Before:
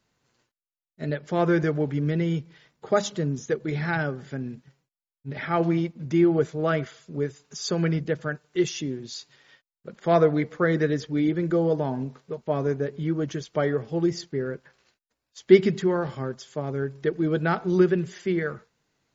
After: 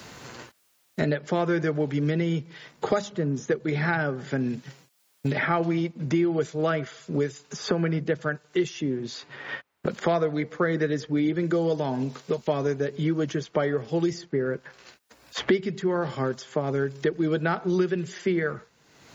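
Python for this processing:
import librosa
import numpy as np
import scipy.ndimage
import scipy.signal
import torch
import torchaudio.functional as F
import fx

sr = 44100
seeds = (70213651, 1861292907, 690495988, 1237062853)

y = scipy.signal.sosfilt(scipy.signal.butter(2, 44.0, 'highpass', fs=sr, output='sos'), x)
y = fx.low_shelf(y, sr, hz=220.0, db=-4.0)
y = fx.band_squash(y, sr, depth_pct=100)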